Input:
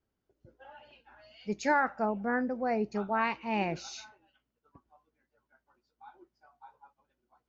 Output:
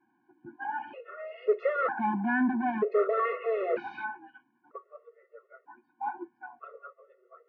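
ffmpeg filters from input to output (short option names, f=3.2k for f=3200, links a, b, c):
-filter_complex "[0:a]asplit=2[a][b];[b]highpass=f=720:p=1,volume=32dB,asoftclip=type=tanh:threshold=-15dB[c];[a][c]amix=inputs=2:normalize=0,lowpass=f=1.2k:p=1,volume=-6dB,highpass=f=160:w=0.5412,highpass=f=160:w=1.3066,equalizer=f=180:t=q:w=4:g=-8,equalizer=f=480:t=q:w=4:g=8,equalizer=f=690:t=q:w=4:g=-6,lowpass=f=2k:w=0.5412,lowpass=f=2k:w=1.3066,afftfilt=real='re*gt(sin(2*PI*0.53*pts/sr)*(1-2*mod(floor(b*sr/1024/360),2)),0)':imag='im*gt(sin(2*PI*0.53*pts/sr)*(1-2*mod(floor(b*sr/1024/360),2)),0)':win_size=1024:overlap=0.75"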